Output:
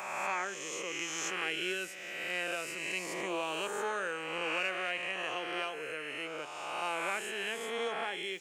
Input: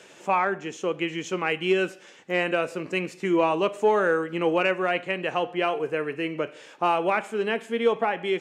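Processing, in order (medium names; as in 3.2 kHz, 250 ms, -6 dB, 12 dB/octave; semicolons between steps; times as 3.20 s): reverse spectral sustain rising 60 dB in 1.94 s; pre-emphasis filter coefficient 0.9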